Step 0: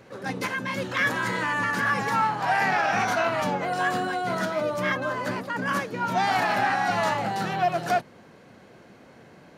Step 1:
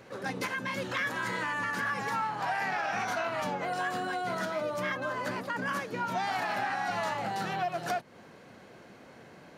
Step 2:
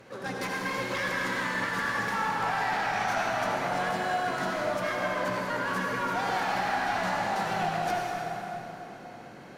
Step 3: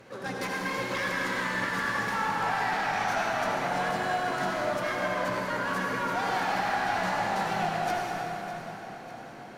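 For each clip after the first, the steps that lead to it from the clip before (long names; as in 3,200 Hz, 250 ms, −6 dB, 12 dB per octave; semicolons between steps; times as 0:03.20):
low-shelf EQ 370 Hz −3.5 dB; downward compressor 3 to 1, threshold −31 dBFS, peak gain reduction 9 dB
asymmetric clip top −30.5 dBFS; convolution reverb RT60 3.7 s, pre-delay 62 ms, DRR −2 dB
delay that swaps between a low-pass and a high-pass 301 ms, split 1,100 Hz, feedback 73%, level −11 dB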